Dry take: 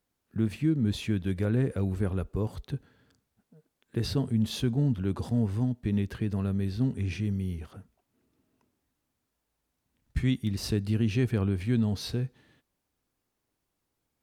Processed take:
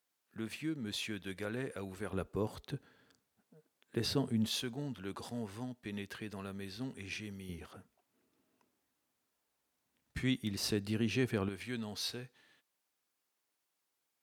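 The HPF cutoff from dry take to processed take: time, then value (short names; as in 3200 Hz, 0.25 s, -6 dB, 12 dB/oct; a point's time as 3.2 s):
HPF 6 dB/oct
1100 Hz
from 2.13 s 350 Hz
from 4.49 s 1100 Hz
from 7.49 s 410 Hz
from 11.49 s 1200 Hz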